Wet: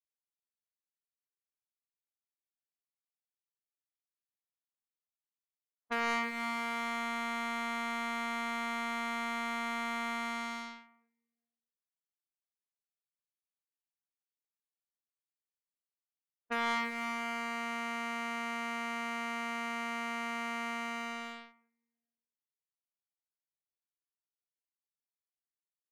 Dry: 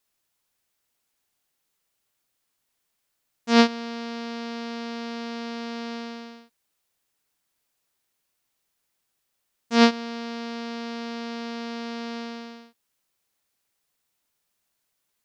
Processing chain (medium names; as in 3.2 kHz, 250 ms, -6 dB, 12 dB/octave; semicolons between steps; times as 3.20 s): feedback delay 112 ms, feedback 58%, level -24 dB; spectral noise reduction 25 dB; low-pass 2 kHz 24 dB/octave; bass shelf 130 Hz -5.5 dB; time stretch by phase-locked vocoder 1.7×; tilt EQ +5.5 dB/octave; early reflections 40 ms -15.5 dB, 61 ms -5.5 dB; waveshaping leveller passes 3; level-controlled noise filter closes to 900 Hz, open at -30.5 dBFS; compression 6:1, threshold -28 dBFS, peak gain reduction 15.5 dB; trim -4.5 dB